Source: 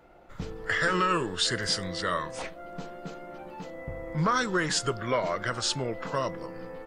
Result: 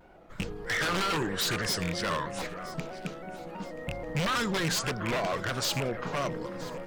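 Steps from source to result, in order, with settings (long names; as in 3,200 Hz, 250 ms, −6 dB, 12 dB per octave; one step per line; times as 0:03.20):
loose part that buzzes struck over −32 dBFS, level −20 dBFS
parametric band 180 Hz +4 dB 0.77 octaves
wave folding −23.5 dBFS
delay that swaps between a low-pass and a high-pass 489 ms, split 2,300 Hz, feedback 51%, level −12 dB
pitch modulation by a square or saw wave square 3.1 Hz, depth 100 cents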